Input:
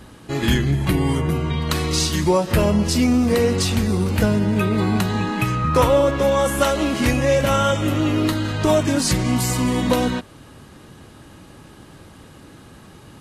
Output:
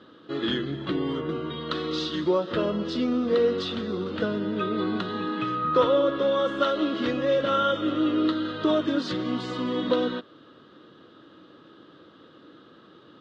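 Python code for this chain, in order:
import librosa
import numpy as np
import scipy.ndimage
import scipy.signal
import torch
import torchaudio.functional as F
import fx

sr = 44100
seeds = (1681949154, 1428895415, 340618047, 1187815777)

y = fx.cabinet(x, sr, low_hz=220.0, low_slope=12, high_hz=4000.0, hz=(320.0, 490.0, 830.0, 1300.0, 2300.0, 3500.0), db=(7, 6, -8, 8, -10, 9))
y = y * 10.0 ** (-8.0 / 20.0)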